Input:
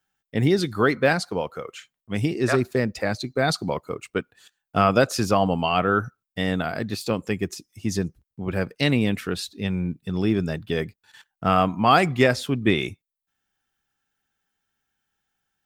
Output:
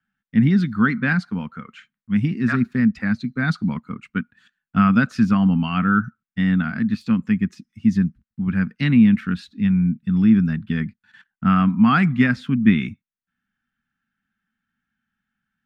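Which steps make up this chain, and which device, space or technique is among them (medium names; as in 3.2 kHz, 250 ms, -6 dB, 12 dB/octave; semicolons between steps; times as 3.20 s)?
FFT filter 110 Hz 0 dB, 230 Hz +13 dB, 350 Hz -11 dB, 580 Hz -18 dB, 1.5 kHz +5 dB, 13 kHz -17 dB; behind a face mask (treble shelf 3.5 kHz -7 dB)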